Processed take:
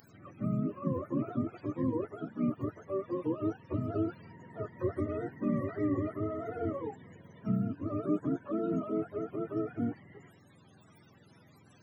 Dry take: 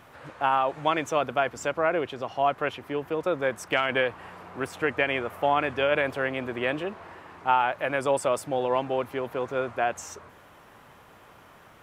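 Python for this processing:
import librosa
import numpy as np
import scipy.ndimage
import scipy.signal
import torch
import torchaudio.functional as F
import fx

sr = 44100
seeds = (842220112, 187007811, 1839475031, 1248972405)

y = fx.octave_mirror(x, sr, pivot_hz=410.0)
y = fx.riaa(y, sr, side='recording')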